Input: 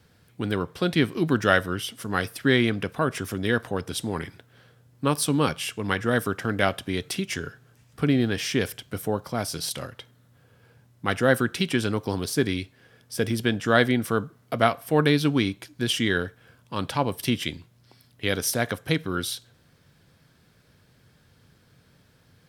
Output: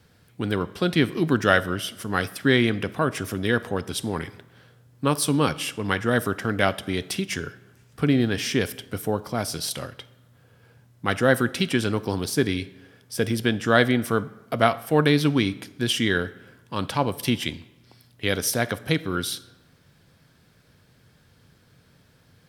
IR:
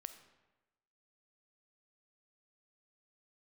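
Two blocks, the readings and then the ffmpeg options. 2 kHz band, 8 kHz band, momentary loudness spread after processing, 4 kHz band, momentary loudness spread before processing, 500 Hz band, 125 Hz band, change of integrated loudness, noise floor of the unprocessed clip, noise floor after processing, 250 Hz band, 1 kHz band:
+1.5 dB, +1.5 dB, 11 LU, +1.5 dB, 11 LU, +1.5 dB, +1.5 dB, +1.5 dB, -60 dBFS, -58 dBFS, +1.5 dB, +1.5 dB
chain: -filter_complex "[0:a]asplit=2[a][b];[1:a]atrim=start_sample=2205[c];[b][c]afir=irnorm=-1:irlink=0,volume=1dB[d];[a][d]amix=inputs=2:normalize=0,volume=-3dB"

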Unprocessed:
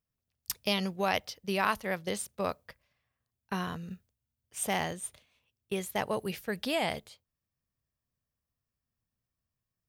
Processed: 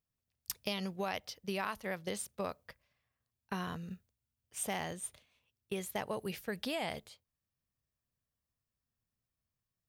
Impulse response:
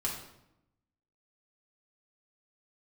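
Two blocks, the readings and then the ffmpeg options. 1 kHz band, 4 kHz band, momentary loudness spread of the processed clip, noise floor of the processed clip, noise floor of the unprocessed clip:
-7.5 dB, -6.5 dB, 10 LU, under -85 dBFS, under -85 dBFS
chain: -af "acompressor=threshold=-31dB:ratio=4,volume=-2.5dB"

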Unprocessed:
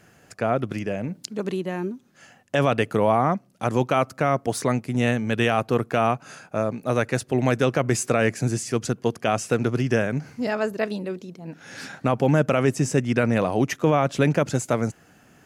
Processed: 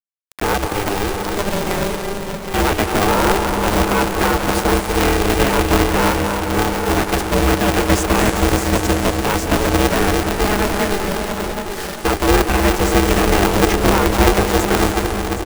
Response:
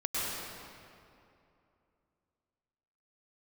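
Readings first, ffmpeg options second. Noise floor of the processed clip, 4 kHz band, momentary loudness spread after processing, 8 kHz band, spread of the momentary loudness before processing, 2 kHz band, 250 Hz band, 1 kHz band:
-26 dBFS, +13.5 dB, 7 LU, +10.5 dB, 10 LU, +9.0 dB, +6.5 dB, +8.5 dB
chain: -filter_complex "[0:a]highshelf=f=5.9k:g=-11.5,acrossover=split=240|980[a][b][c];[b]aeval=exprs='(tanh(20*val(0)+0.65)-tanh(0.65))/20':c=same[d];[c]alimiter=limit=-21.5dB:level=0:latency=1[e];[a][d][e]amix=inputs=3:normalize=0,acrusher=bits=5:mix=0:aa=0.000001,aecho=1:1:767:0.316,asplit=2[f][g];[1:a]atrim=start_sample=2205,asetrate=25137,aresample=44100,highshelf=f=9.7k:g=11[h];[g][h]afir=irnorm=-1:irlink=0,volume=-13dB[i];[f][i]amix=inputs=2:normalize=0,aeval=exprs='val(0)*sgn(sin(2*PI*200*n/s))':c=same,volume=5.5dB"

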